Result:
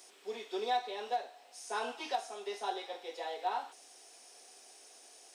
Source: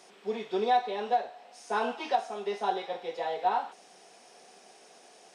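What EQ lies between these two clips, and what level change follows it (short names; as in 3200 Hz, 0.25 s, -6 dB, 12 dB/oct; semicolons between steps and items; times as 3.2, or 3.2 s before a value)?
RIAA curve recording; resonant low shelf 200 Hz -11 dB, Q 3; -7.5 dB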